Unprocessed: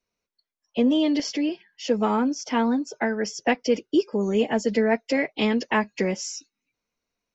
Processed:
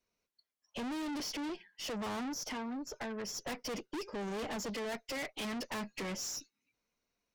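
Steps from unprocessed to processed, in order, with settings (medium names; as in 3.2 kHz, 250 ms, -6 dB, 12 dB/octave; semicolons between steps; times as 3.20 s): 1.20–1.84 s: elliptic high-pass 160 Hz; 2.50–3.29 s: compression 6:1, threshold -30 dBFS, peak gain reduction 11 dB; 4.70–5.45 s: bass shelf 340 Hz -8.5 dB; valve stage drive 37 dB, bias 0.45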